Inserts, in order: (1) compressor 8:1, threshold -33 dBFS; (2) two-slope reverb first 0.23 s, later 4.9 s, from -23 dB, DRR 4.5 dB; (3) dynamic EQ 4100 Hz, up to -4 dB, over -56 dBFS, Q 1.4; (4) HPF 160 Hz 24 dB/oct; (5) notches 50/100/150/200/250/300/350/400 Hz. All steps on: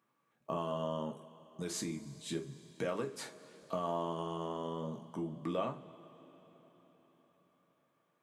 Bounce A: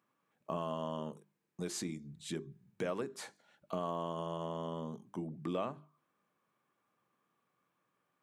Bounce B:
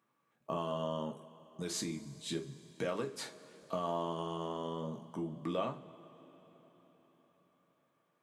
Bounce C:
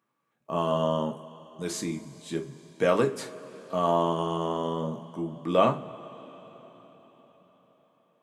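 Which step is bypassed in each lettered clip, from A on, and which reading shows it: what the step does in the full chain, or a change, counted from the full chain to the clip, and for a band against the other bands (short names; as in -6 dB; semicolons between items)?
2, loudness change -1.0 LU; 3, 4 kHz band +3.0 dB; 1, crest factor change +3.0 dB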